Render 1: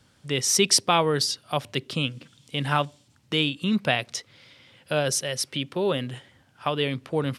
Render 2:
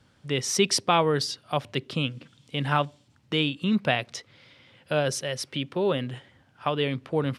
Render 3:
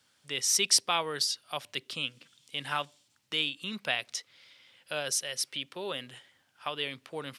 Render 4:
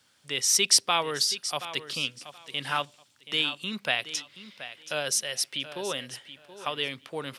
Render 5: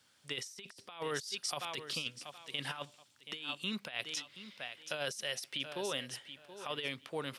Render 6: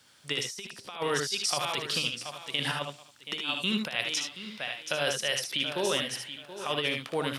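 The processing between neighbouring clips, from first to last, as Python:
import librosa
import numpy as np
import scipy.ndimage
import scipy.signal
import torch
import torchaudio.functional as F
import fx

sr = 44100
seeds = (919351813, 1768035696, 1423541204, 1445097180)

y1 = fx.high_shelf(x, sr, hz=5300.0, db=-10.5)
y2 = fx.tilt_eq(y1, sr, slope=4.0)
y2 = F.gain(torch.from_numpy(y2), -8.0).numpy()
y3 = fx.echo_feedback(y2, sr, ms=727, feedback_pct=20, wet_db=-13.5)
y3 = F.gain(torch.from_numpy(y3), 3.5).numpy()
y4 = fx.over_compress(y3, sr, threshold_db=-31.0, ratio=-0.5)
y4 = F.gain(torch.from_numpy(y4), -7.5).numpy()
y5 = fx.room_early_taps(y4, sr, ms=(61, 75), db=(-9.5, -6.5))
y5 = F.gain(torch.from_numpy(y5), 8.0).numpy()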